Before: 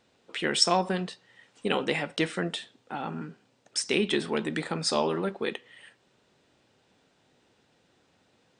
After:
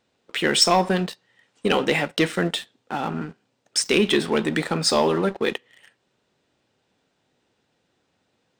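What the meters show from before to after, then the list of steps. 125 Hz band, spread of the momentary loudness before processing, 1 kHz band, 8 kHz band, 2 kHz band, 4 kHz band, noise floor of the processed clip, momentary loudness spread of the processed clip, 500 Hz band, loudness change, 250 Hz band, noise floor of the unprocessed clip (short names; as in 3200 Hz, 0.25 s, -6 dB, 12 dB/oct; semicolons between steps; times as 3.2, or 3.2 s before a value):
+7.0 dB, 15 LU, +6.5 dB, +7.0 dB, +7.0 dB, +6.5 dB, -72 dBFS, 14 LU, +7.0 dB, +6.5 dB, +7.0 dB, -68 dBFS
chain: sample leveller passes 2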